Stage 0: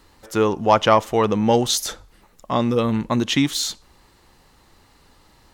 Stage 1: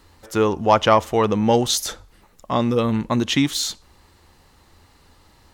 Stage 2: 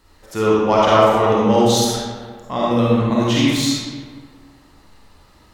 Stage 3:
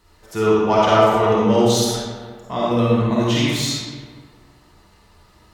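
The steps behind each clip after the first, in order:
parametric band 83 Hz +9.5 dB 0.24 octaves
comb and all-pass reverb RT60 1.7 s, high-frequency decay 0.6×, pre-delay 10 ms, DRR −7 dB; level −4.5 dB
notch comb filter 270 Hz

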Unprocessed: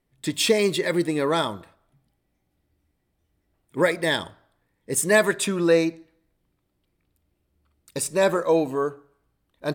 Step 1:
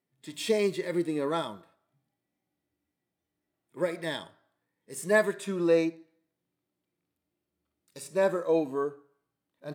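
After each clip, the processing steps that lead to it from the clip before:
high-pass filter 170 Hz 12 dB per octave
harmonic and percussive parts rebalanced percussive −13 dB
level −4.5 dB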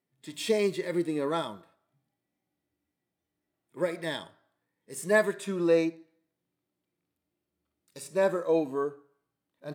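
no processing that can be heard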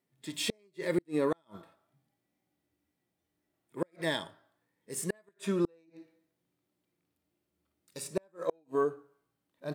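soft clipping −12.5 dBFS, distortion −25 dB
gate with flip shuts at −20 dBFS, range −40 dB
level +2 dB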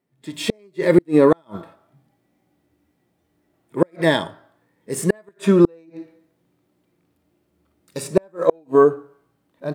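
automatic gain control gain up to 9 dB
high-shelf EQ 2,100 Hz −9 dB
level +7.5 dB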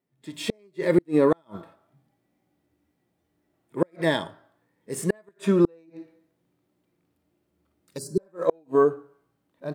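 healed spectral selection 0:08.01–0:08.25, 450–4,000 Hz after
level −6 dB

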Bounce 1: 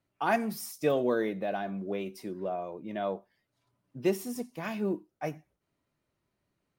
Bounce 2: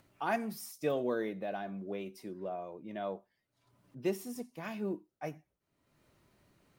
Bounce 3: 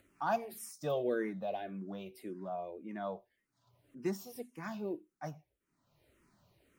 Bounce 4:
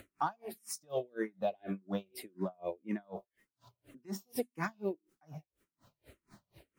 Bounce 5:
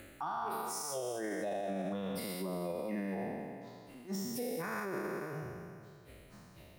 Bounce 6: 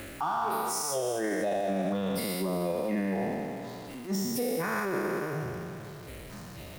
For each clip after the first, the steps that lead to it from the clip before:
upward compression, threshold −47 dBFS; level −5.5 dB
frequency shifter mixed with the dry sound −1.8 Hz; level +1.5 dB
downward compressor 6 to 1, threshold −41 dBFS, peak gain reduction 13.5 dB; tremolo with a sine in dB 4.1 Hz, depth 37 dB; level +13.5 dB
peak hold with a decay on every bin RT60 2.20 s; brickwall limiter −29.5 dBFS, peak gain reduction 11 dB
converter with a step at zero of −50.5 dBFS; level +7 dB

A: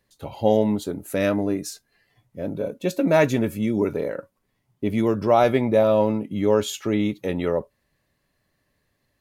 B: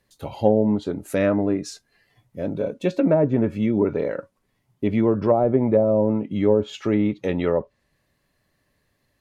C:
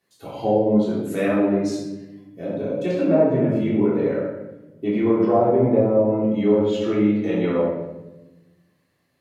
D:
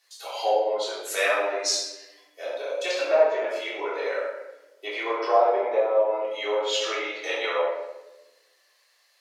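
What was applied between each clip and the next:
treble cut that deepens with the level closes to 530 Hz, closed at −13.5 dBFS; level +2 dB
high-pass filter 150 Hz 12 dB per octave; rectangular room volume 490 cubic metres, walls mixed, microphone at 3.4 metres; level −7.5 dB
Bessel high-pass filter 870 Hz, order 8; parametric band 5,300 Hz +10 dB 1.4 octaves; level +5.5 dB

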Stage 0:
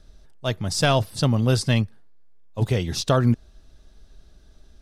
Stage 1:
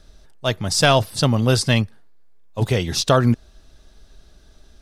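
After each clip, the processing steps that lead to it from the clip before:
low-shelf EQ 360 Hz −5 dB
level +6 dB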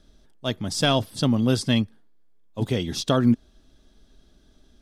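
hollow resonant body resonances 250/3,300 Hz, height 10 dB, ringing for 20 ms
level −8.5 dB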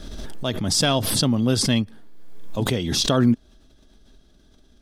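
background raised ahead of every attack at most 30 dB per second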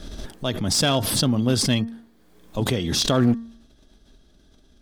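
hum removal 229.7 Hz, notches 8
asymmetric clip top −17.5 dBFS, bottom −9 dBFS

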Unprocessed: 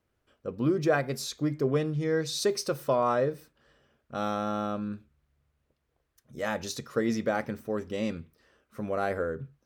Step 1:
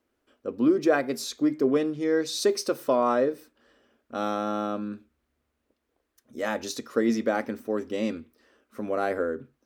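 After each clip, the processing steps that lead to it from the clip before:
low shelf with overshoot 200 Hz −7.5 dB, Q 3
level +1.5 dB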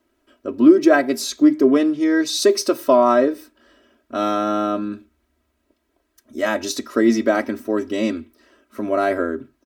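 comb filter 3.1 ms, depth 77%
level +6 dB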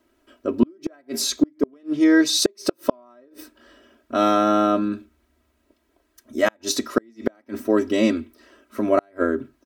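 gate with flip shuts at −8 dBFS, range −38 dB
level +2.5 dB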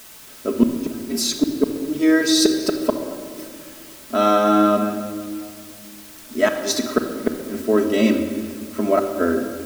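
in parallel at −3.5 dB: bit-depth reduction 6 bits, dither triangular
on the sum: rectangular room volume 3,800 cubic metres, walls mixed, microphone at 1.5 metres
level −4 dB

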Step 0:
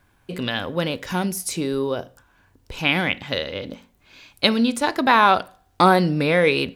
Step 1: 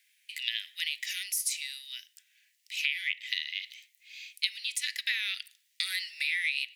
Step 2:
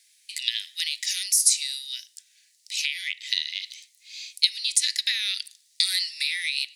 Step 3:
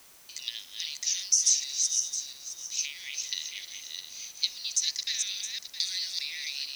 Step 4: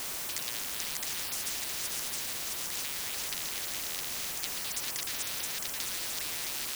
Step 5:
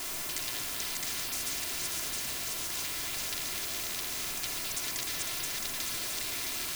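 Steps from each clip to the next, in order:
Chebyshev high-pass filter 1,900 Hz, order 6; downward compressor 5 to 1, threshold −30 dBFS, peak gain reduction 14.5 dB; level +2.5 dB
flat-topped bell 6,300 Hz +13 dB
feedback delay that plays each chunk backwards 333 ms, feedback 47%, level −4 dB; transistor ladder low-pass 6,300 Hz, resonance 85%; background noise white −55 dBFS
every bin compressed towards the loudest bin 10 to 1; level −6.5 dB
rectangular room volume 3,100 cubic metres, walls furnished, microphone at 3.1 metres; level −1.5 dB

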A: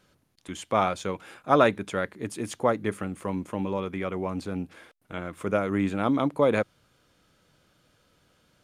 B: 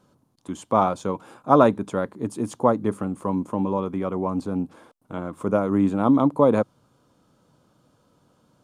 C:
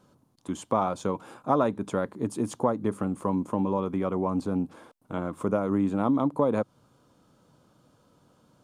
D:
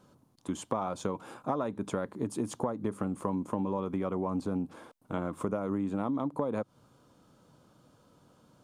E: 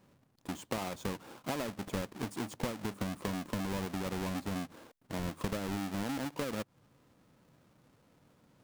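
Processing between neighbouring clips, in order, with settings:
octave-band graphic EQ 125/250/500/1,000/2,000/8,000 Hz +8/+10/+4/+12/−8/+4 dB; level −4.5 dB
downward compressor 2.5 to 1, threshold −23 dBFS, peak gain reduction 9 dB
downward compressor 5 to 1, threshold −28 dBFS, peak gain reduction 10 dB
each half-wave held at its own peak; level −8.5 dB

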